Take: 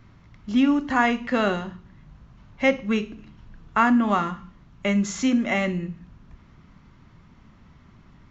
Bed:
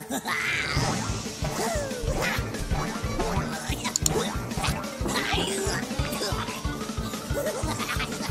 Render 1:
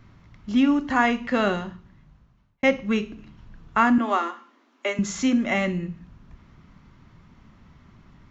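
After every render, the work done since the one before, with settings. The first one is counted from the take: 1.62–2.63 fade out linear; 3.98–4.99 steep high-pass 240 Hz 96 dB/oct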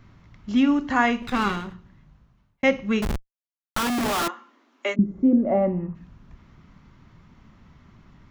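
1.22–1.74 minimum comb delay 0.8 ms; 3.02–4.28 Schmitt trigger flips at -34.5 dBFS; 4.94–5.94 synth low-pass 260 Hz -> 1100 Hz, resonance Q 2.6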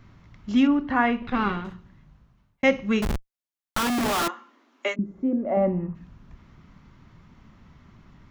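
0.67–1.65 air absorption 290 m; 4.88–5.57 low shelf 360 Hz -10 dB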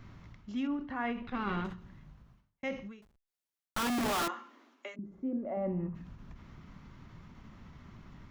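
reverse; compressor 10:1, threshold -31 dBFS, peak gain reduction 17 dB; reverse; ending taper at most 120 dB/s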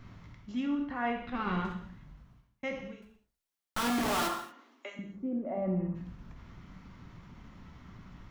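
non-linear reverb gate 0.26 s falling, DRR 3.5 dB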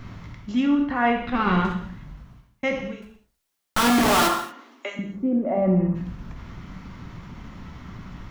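gain +11.5 dB

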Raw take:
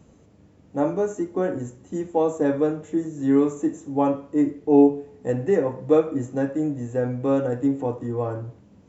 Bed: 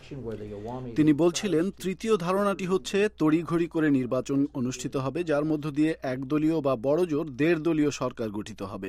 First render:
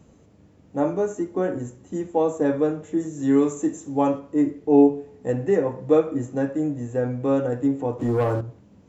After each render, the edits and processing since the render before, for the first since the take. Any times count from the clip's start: 3–4.19 high shelf 4100 Hz +9 dB; 7.99–8.41 sample leveller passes 2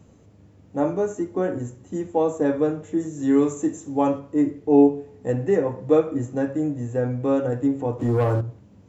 bell 100 Hz +7 dB 0.51 oct; de-hum 45.36 Hz, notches 3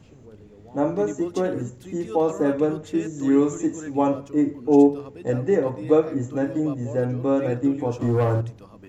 add bed -12 dB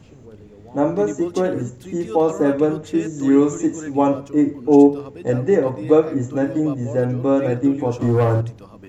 gain +4 dB; limiter -2 dBFS, peak gain reduction 1 dB

